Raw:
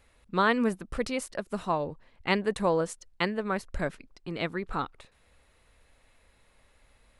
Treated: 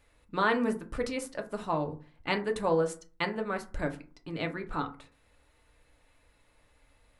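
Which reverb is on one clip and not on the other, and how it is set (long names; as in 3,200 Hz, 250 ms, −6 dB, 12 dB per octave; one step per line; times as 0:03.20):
feedback delay network reverb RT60 0.37 s, low-frequency decay 1.3×, high-frequency decay 0.45×, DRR 4 dB
level −3.5 dB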